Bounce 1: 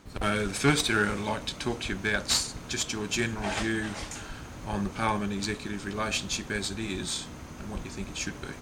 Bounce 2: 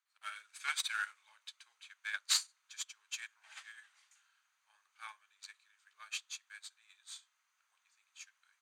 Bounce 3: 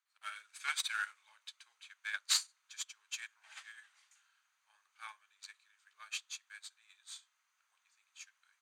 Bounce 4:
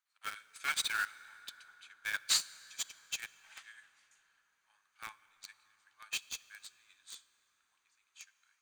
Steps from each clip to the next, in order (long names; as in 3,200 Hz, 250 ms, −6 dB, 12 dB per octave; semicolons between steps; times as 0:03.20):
high-pass filter 1,200 Hz 24 dB per octave; notch filter 5,300 Hz, Q 13; expander for the loud parts 2.5 to 1, over −40 dBFS; level −3.5 dB
no processing that can be heard
in parallel at −10 dB: log-companded quantiser 2 bits; on the sum: convolution reverb RT60 5.3 s, pre-delay 23 ms, DRR 17 dB; level −1.5 dB